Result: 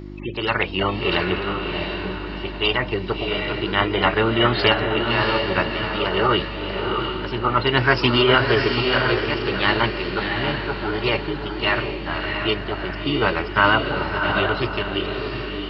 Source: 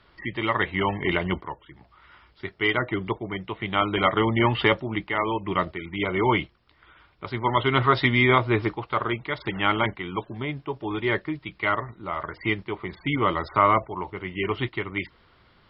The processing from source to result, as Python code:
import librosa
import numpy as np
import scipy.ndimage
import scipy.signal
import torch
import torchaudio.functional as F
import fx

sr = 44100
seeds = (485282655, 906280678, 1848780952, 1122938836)

y = fx.dmg_buzz(x, sr, base_hz=50.0, harmonics=7, level_db=-38.0, tilt_db=-3, odd_only=False)
y = fx.echo_diffused(y, sr, ms=683, feedback_pct=40, wet_db=-4)
y = fx.formant_shift(y, sr, semitones=5)
y = y * 10.0 ** (2.5 / 20.0)